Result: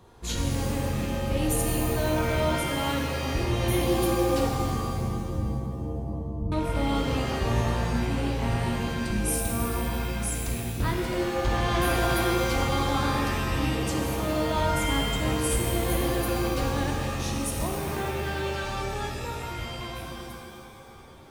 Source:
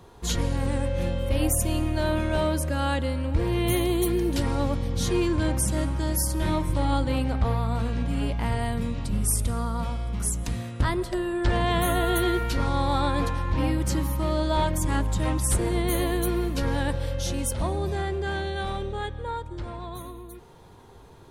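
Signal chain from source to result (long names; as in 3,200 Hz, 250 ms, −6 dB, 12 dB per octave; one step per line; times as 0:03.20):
loose part that buzzes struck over −33 dBFS, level −30 dBFS
0:04.47–0:06.52: inverse Chebyshev low-pass filter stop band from 1,000 Hz, stop band 70 dB
reverb with rising layers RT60 1.9 s, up +7 semitones, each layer −2 dB, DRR 1.5 dB
level −4.5 dB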